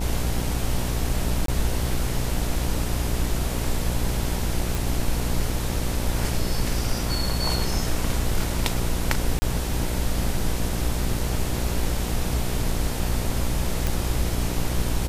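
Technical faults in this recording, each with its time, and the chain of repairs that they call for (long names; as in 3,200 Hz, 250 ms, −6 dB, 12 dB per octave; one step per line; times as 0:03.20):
mains buzz 60 Hz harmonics 16 −28 dBFS
0:01.46–0:01.48: drop-out 23 ms
0:04.75: click
0:09.39–0:09.42: drop-out 30 ms
0:13.87: click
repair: click removal
hum removal 60 Hz, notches 16
repair the gap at 0:01.46, 23 ms
repair the gap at 0:09.39, 30 ms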